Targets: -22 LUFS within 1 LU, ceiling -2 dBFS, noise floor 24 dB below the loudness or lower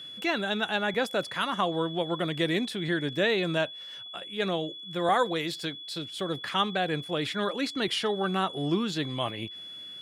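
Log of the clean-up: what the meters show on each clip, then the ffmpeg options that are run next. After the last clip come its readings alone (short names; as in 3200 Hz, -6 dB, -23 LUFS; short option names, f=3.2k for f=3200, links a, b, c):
steady tone 3400 Hz; tone level -40 dBFS; loudness -29.0 LUFS; peak -13.0 dBFS; loudness target -22.0 LUFS
-> -af "bandreject=f=3.4k:w=30"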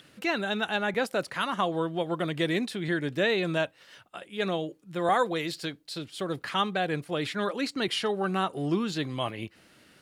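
steady tone none; loudness -29.5 LUFS; peak -13.0 dBFS; loudness target -22.0 LUFS
-> -af "volume=7.5dB"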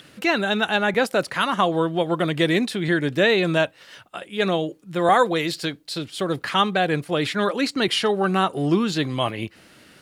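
loudness -22.0 LUFS; peak -5.5 dBFS; noise floor -52 dBFS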